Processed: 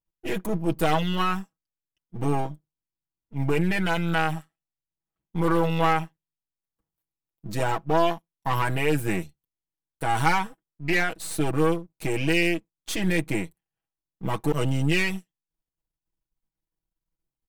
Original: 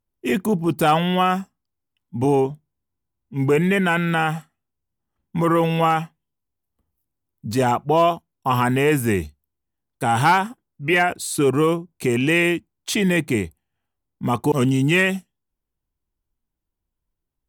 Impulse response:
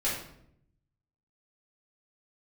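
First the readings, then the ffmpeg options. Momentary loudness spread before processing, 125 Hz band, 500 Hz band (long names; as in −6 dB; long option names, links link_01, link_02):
10 LU, −4.5 dB, −6.5 dB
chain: -af "aeval=exprs='if(lt(val(0),0),0.251*val(0),val(0))':channel_layout=same,aecho=1:1:6.2:0.72,volume=-5dB"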